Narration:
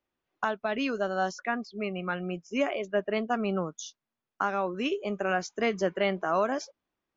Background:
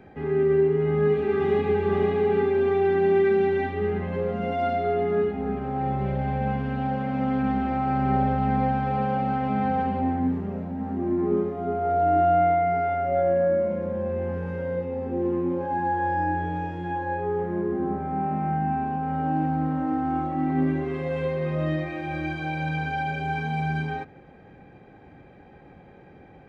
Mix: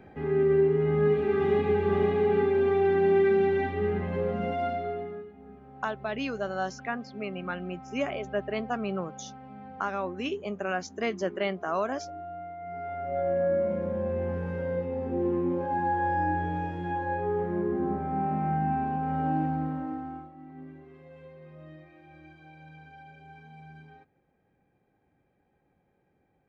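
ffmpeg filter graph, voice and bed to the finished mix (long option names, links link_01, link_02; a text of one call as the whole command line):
ffmpeg -i stem1.wav -i stem2.wav -filter_complex "[0:a]adelay=5400,volume=-2.5dB[link_01];[1:a]volume=16.5dB,afade=type=out:start_time=4.39:duration=0.85:silence=0.11885,afade=type=in:start_time=12.57:duration=1.17:silence=0.11885,afade=type=out:start_time=19.28:duration=1.04:silence=0.1[link_02];[link_01][link_02]amix=inputs=2:normalize=0" out.wav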